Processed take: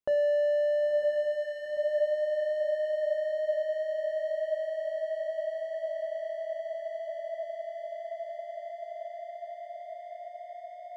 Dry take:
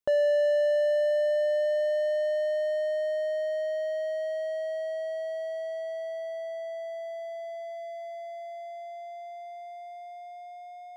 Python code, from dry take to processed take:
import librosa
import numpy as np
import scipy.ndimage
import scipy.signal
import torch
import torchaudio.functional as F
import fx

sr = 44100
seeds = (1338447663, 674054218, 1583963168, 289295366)

p1 = fx.high_shelf(x, sr, hz=2800.0, db=-8.5)
p2 = fx.hum_notches(p1, sr, base_hz=60, count=10)
p3 = p2 + fx.echo_diffused(p2, sr, ms=974, feedback_pct=69, wet_db=-8.0, dry=0)
y = F.gain(torch.from_numpy(p3), -1.5).numpy()